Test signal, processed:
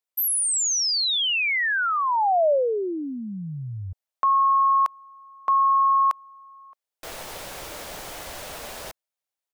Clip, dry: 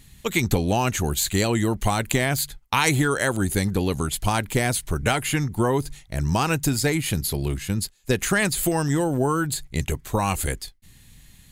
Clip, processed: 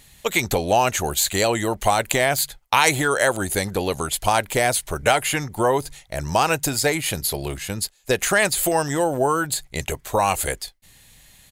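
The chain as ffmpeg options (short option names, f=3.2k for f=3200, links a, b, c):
-af "firequalizer=gain_entry='entry(230,0);entry(590,14);entry(1100,9)':delay=0.05:min_phase=1,volume=-5.5dB"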